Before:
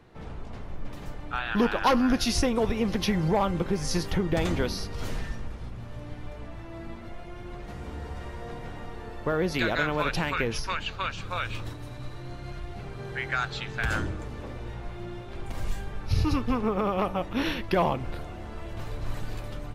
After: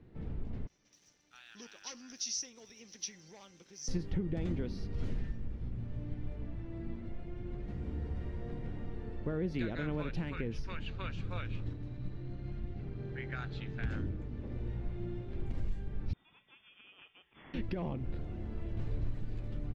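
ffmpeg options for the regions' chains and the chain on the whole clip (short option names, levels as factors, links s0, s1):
-filter_complex "[0:a]asettb=1/sr,asplit=3[s0][s1][s2];[s0]atrim=end=0.674[s3];[s1]atrim=start=0.67:end=3.88,asetpts=PTS-STARTPTS,afade=t=in:d=0.004:c=qsin,afade=t=out:st=3.206:d=0.004:c=qsin,lowpass=f=5900:t=q:w=14,aeval=exprs='sgn(val(0))*max(abs(val(0))-0.00422,0)':c=same,aderivative[s4];[s2]atrim=start=3.876[s5];[s3][s4]acrossfade=d=0.004:c1=hsin:c2=qsin[s6];[s6][s5]acrossfade=d=0.004:c1=qsin:c2=hsin,asettb=1/sr,asplit=3[s7][s8][s9];[s7]atrim=end=11.414[s10];[s8]atrim=start=11.41:end=14.52,asetpts=PTS-STARTPTS,afade=t=in:d=0.004:c=qsin,afade=t=out:st=3.106:d=0.004:c=qsin,lowpass=6900,tremolo=f=180:d=0.462[s11];[s9]atrim=start=14.516[s12];[s10][s11]acrossfade=d=0.004:c1=hsin:c2=qsin[s13];[s13][s12]acrossfade=d=0.004:c1=qsin:c2=hsin,asettb=1/sr,asplit=3[s14][s15][s16];[s14]atrim=end=16.134[s17];[s15]atrim=start=16.13:end=17.54,asetpts=PTS-STARTPTS,afade=t=in:d=0.004:c=qsin,afade=t=out:st=1.406:d=0.004:c=qsin,aderivative,lowpass=f=3100:t=q:w=0.5098,lowpass=f=3100:t=q:w=0.6013,lowpass=f=3100:t=q:w=0.9,lowpass=f=3100:t=q:w=2.563,afreqshift=-3700[s18];[s16]atrim=start=17.536[s19];[s17][s18]acrossfade=d=0.004:c1=hsin:c2=qsin[s20];[s20][s19]acrossfade=d=0.004:c1=qsin:c2=hsin,firequalizer=gain_entry='entry(250,0);entry(660,-12);entry(1100,-16);entry(1900,-11);entry(12000,-28)':delay=0.05:min_phase=1,alimiter=level_in=1.19:limit=0.0631:level=0:latency=1:release=463,volume=0.841"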